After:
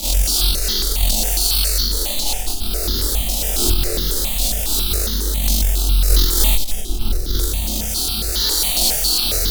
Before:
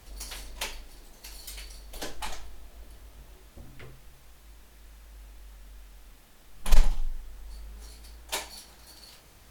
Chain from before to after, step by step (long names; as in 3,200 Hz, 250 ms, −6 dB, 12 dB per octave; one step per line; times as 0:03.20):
sign of each sample alone
octave-band graphic EQ 125/1,000/2,000/4,000 Hz −11/−9/−11/+7 dB
on a send: flutter between parallel walls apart 3.9 metres, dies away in 0.32 s
on the sum: four-comb reverb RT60 0.75 s, combs from 25 ms, DRR −9.5 dB
harmonic generator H 2 −11 dB, 5 −31 dB, 7 −24 dB, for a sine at −1 dBFS
in parallel at +2 dB: brickwall limiter −12.5 dBFS, peak gain reduction 11 dB
on the sum: notch filter 1,000 Hz, Q 8.4
step-sequenced phaser 7.3 Hz 410–2,500 Hz
level −2 dB